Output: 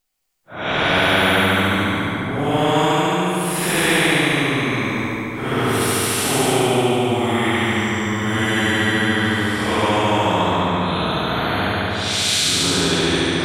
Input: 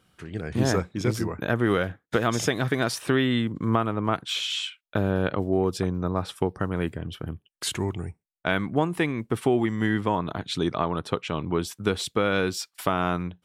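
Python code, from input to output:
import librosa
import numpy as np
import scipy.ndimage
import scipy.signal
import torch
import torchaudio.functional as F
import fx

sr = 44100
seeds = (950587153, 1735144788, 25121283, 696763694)

y = fx.paulstretch(x, sr, seeds[0], factor=5.6, window_s=0.1, from_s=8.32)
y = fx.echo_heads(y, sr, ms=72, heads='all three', feedback_pct=57, wet_db=-7)
y = fx.spectral_comp(y, sr, ratio=2.0)
y = y * librosa.db_to_amplitude(2.0)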